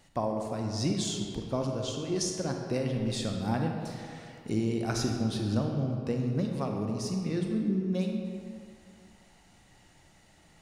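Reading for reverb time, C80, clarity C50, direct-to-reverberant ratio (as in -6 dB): 2.3 s, 4.0 dB, 3.0 dB, 2.0 dB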